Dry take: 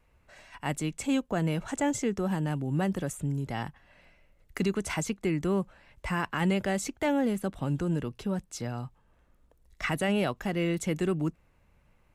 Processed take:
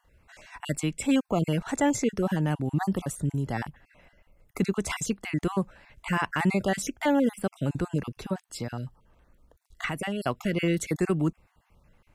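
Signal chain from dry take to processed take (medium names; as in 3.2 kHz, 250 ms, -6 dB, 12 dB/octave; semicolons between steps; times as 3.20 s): random holes in the spectrogram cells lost 25%; 3.63–4.79 s: peaking EQ 4.1 kHz -5.5 dB 2 oct; 8.33–10.22 s: compression 6:1, threshold -32 dBFS, peak gain reduction 8.5 dB; trim +4 dB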